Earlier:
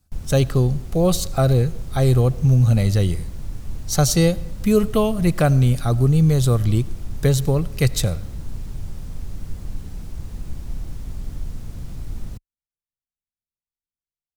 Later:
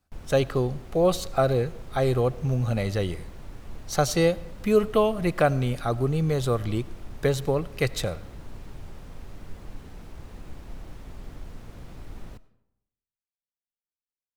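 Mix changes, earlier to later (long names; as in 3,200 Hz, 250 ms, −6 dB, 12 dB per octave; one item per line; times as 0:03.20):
background: send on
master: add bass and treble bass −12 dB, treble −11 dB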